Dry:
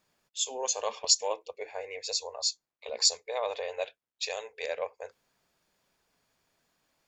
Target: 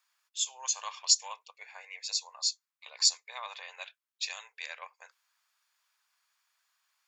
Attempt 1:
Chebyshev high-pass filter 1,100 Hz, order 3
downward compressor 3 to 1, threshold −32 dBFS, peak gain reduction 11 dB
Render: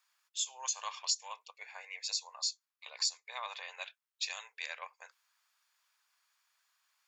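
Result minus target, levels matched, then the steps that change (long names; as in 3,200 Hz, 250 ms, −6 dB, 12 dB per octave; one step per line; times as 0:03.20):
downward compressor: peak gain reduction +11 dB
remove: downward compressor 3 to 1, threshold −32 dBFS, peak gain reduction 11 dB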